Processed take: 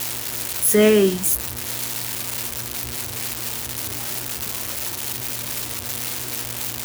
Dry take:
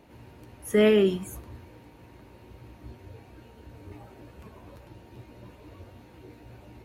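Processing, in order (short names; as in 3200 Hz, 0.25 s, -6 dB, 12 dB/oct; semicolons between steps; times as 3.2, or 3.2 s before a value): switching spikes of -18.5 dBFS; buzz 120 Hz, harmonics 27, -46 dBFS -4 dB/oct; gain +5 dB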